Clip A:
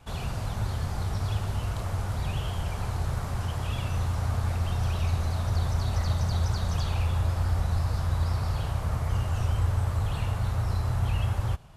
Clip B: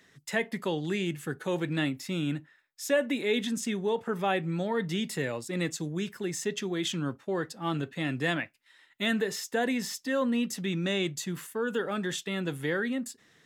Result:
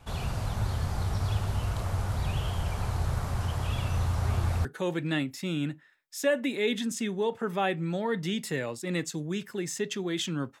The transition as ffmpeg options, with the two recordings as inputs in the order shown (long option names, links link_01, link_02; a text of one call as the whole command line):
ffmpeg -i cue0.wav -i cue1.wav -filter_complex "[1:a]asplit=2[link_01][link_02];[0:a]apad=whole_dur=10.6,atrim=end=10.6,atrim=end=4.652[link_03];[link_02]atrim=start=1.308:end=7.26[link_04];[link_01]atrim=start=0.91:end=1.31,asetpts=PTS-STARTPTS,volume=-14.5dB,afade=type=in:duration=0.004:curve=hsin,afade=type=out:start_time=0.396:duration=0.004:curve=hsin,adelay=187425S[link_05];[link_03][link_04]acrossfade=duration=0.004:curve1=hsin:curve2=hsin[link_06];[link_06][link_05]amix=inputs=2:normalize=0" out.wav